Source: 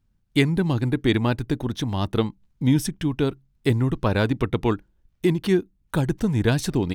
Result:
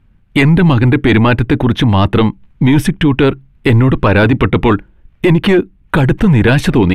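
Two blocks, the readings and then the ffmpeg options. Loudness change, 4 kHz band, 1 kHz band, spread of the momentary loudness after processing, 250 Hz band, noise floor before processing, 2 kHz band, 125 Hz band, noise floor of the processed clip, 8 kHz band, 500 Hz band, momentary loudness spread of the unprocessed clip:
+12.0 dB, +10.0 dB, +14.0 dB, 6 LU, +11.5 dB, -67 dBFS, +14.5 dB, +12.5 dB, -49 dBFS, +3.0 dB, +11.0 dB, 6 LU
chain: -af "aresample=32000,aresample=44100,highshelf=f=3700:t=q:w=1.5:g=-12.5,apsyclip=11.9,volume=0.631"

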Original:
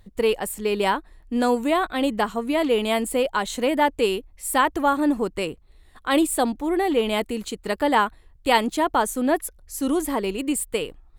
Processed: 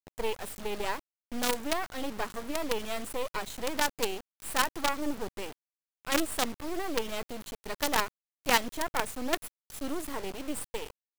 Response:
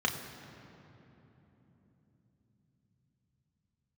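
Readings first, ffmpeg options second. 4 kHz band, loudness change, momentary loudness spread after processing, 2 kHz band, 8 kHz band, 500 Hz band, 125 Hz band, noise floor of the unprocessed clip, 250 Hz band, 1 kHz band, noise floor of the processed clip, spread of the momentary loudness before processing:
-5.0 dB, -9.5 dB, 12 LU, -6.5 dB, -5.0 dB, -12.0 dB, -8.5 dB, -53 dBFS, -13.5 dB, -10.5 dB, under -85 dBFS, 8 LU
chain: -af "aeval=exprs='val(0)+0.00501*(sin(2*PI*50*n/s)+sin(2*PI*2*50*n/s)/2+sin(2*PI*3*50*n/s)/3+sin(2*PI*4*50*n/s)/4+sin(2*PI*5*50*n/s)/5)':c=same,acrusher=bits=3:dc=4:mix=0:aa=0.000001,volume=0.447"

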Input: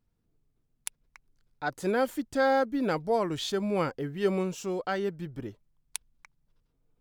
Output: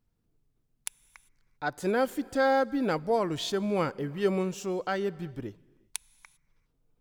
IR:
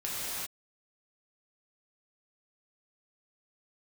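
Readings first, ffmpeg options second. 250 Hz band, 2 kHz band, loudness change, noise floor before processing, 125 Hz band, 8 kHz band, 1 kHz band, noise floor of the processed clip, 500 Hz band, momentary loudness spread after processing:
+0.5 dB, +0.5 dB, 0.0 dB, -76 dBFS, +0.5 dB, +0.5 dB, +0.5 dB, -74 dBFS, 0.0 dB, 15 LU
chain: -filter_complex "[0:a]asplit=2[s0][s1];[1:a]atrim=start_sample=2205[s2];[s1][s2]afir=irnorm=-1:irlink=0,volume=0.0422[s3];[s0][s3]amix=inputs=2:normalize=0"

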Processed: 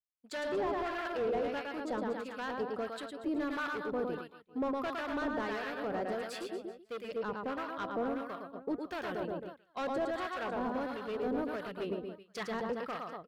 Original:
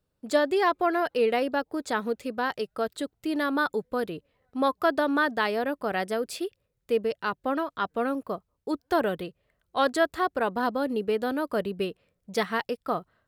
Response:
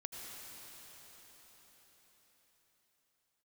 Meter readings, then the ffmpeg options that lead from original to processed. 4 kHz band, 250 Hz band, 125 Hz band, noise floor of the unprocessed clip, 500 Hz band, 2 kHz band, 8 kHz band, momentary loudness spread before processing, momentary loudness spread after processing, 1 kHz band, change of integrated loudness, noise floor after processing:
-10.5 dB, -7.5 dB, -6.0 dB, -78 dBFS, -8.5 dB, -10.0 dB, -11.0 dB, 9 LU, 7 LU, -9.5 dB, -9.0 dB, -63 dBFS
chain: -filter_complex "[0:a]asplit=2[s0][s1];[s1]acompressor=threshold=0.0158:ratio=6,volume=0.708[s2];[s0][s2]amix=inputs=2:normalize=0,aecho=1:1:110|236.5|382|549.3|741.7:0.631|0.398|0.251|0.158|0.1,asoftclip=type=hard:threshold=0.0841,acrossover=split=1000[s3][s4];[s3]aeval=exprs='val(0)*(1-0.7/2+0.7/2*cos(2*PI*1.5*n/s))':c=same[s5];[s4]aeval=exprs='val(0)*(1-0.7/2-0.7/2*cos(2*PI*1.5*n/s))':c=same[s6];[s5][s6]amix=inputs=2:normalize=0,agate=range=0.0224:threshold=0.02:ratio=3:detection=peak,highshelf=f=5900:g=-12,volume=0.473"

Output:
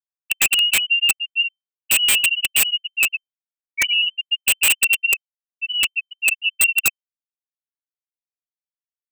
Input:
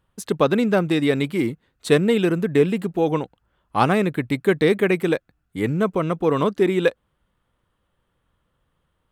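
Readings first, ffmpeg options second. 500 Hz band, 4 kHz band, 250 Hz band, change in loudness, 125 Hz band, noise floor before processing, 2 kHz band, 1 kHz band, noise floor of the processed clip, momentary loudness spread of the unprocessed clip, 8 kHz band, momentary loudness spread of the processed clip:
-27.5 dB, +17.0 dB, under -25 dB, +3.5 dB, under -25 dB, -72 dBFS, +9.5 dB, -14.0 dB, under -85 dBFS, 9 LU, no reading, 8 LU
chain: -af "afftfilt=real='re*gte(hypot(re,im),0.794)':imag='im*gte(hypot(re,im),0.794)':win_size=1024:overlap=0.75,lowpass=f=2600:t=q:w=0.5098,lowpass=f=2600:t=q:w=0.6013,lowpass=f=2600:t=q:w=0.9,lowpass=f=2600:t=q:w=2.563,afreqshift=-3100,aeval=exprs='(mod(4.73*val(0)+1,2)-1)/4.73':c=same,volume=1.5"

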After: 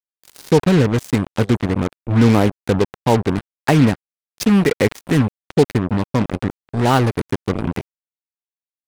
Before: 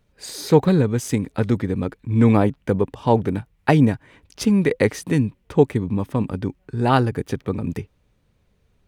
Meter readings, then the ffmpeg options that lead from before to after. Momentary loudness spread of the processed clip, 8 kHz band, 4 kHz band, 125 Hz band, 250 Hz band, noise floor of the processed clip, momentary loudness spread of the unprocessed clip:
9 LU, +2.0 dB, +6.0 dB, +2.5 dB, +2.5 dB, under -85 dBFS, 11 LU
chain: -filter_complex "[0:a]asplit=2[s0][s1];[s1]alimiter=limit=0.335:level=0:latency=1:release=80,volume=1.26[s2];[s0][s2]amix=inputs=2:normalize=0,acrusher=bits=2:mix=0:aa=0.5,volume=0.668"

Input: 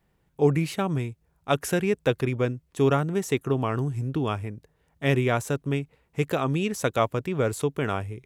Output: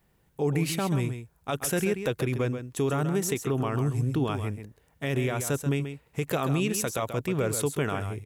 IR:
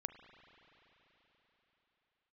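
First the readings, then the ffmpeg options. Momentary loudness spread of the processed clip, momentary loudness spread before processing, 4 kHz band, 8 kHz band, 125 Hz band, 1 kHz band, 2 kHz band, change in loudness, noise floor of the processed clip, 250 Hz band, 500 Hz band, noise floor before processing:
7 LU, 8 LU, -1.0 dB, +5.5 dB, -1.0 dB, -4.0 dB, -2.5 dB, -2.0 dB, -66 dBFS, -1.5 dB, -3.5 dB, -69 dBFS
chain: -filter_complex "[0:a]highshelf=f=6700:g=8,alimiter=limit=0.106:level=0:latency=1:release=83,asplit=2[s0][s1];[s1]aecho=0:1:134:0.355[s2];[s0][s2]amix=inputs=2:normalize=0,volume=1.19"

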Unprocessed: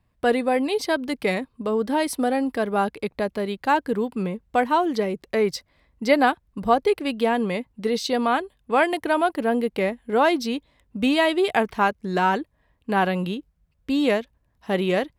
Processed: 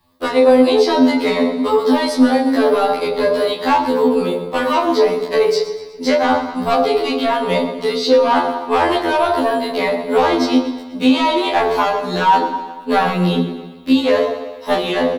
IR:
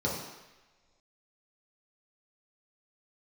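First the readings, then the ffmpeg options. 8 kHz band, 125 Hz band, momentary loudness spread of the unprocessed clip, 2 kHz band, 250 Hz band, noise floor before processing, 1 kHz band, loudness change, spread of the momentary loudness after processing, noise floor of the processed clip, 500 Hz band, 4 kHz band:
+4.0 dB, +5.5 dB, 8 LU, +3.5 dB, +7.5 dB, -68 dBFS, +7.0 dB, +7.0 dB, 7 LU, -33 dBFS, +8.0 dB, +9.0 dB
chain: -filter_complex "[0:a]aemphasis=mode=production:type=75fm,acrossover=split=7800[s0][s1];[s1]acompressor=threshold=0.00891:ratio=4:attack=1:release=60[s2];[s0][s2]amix=inputs=2:normalize=0,equalizer=f=250:t=o:w=1:g=9,equalizer=f=500:t=o:w=1:g=9,equalizer=f=1000:t=o:w=1:g=12,equalizer=f=4000:t=o:w=1:g=11,acrossover=split=200|610|2600[s3][s4][s5][s6];[s3]acompressor=threshold=0.0224:ratio=4[s7];[s4]acompressor=threshold=0.112:ratio=4[s8];[s5]acompressor=threshold=0.355:ratio=4[s9];[s6]acompressor=threshold=0.0355:ratio=4[s10];[s7][s8][s9][s10]amix=inputs=4:normalize=0,flanger=delay=19.5:depth=7.3:speed=0.47,asoftclip=type=tanh:threshold=0.266,aecho=1:1:123|246|369|492|615:0.178|0.0978|0.0538|0.0296|0.0163,asplit=2[s11][s12];[1:a]atrim=start_sample=2205,adelay=26[s13];[s12][s13]afir=irnorm=-1:irlink=0,volume=0.237[s14];[s11][s14]amix=inputs=2:normalize=0,alimiter=level_in=2.99:limit=0.891:release=50:level=0:latency=1,afftfilt=real='re*2*eq(mod(b,4),0)':imag='im*2*eq(mod(b,4),0)':win_size=2048:overlap=0.75,volume=0.708"

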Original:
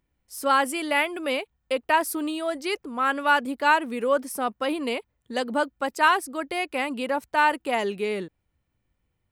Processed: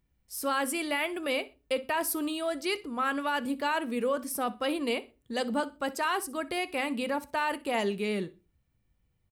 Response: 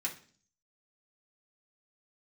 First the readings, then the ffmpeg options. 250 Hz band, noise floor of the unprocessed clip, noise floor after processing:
-2.5 dB, -76 dBFS, -74 dBFS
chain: -filter_complex "[0:a]bass=f=250:g=8,treble=f=4000:g=2,alimiter=limit=0.15:level=0:latency=1:release=19,aecho=1:1:62|124:0.1|0.026,asplit=2[s0][s1];[1:a]atrim=start_sample=2205,asetrate=66150,aresample=44100[s2];[s1][s2]afir=irnorm=-1:irlink=0,volume=0.398[s3];[s0][s3]amix=inputs=2:normalize=0,volume=0.668"

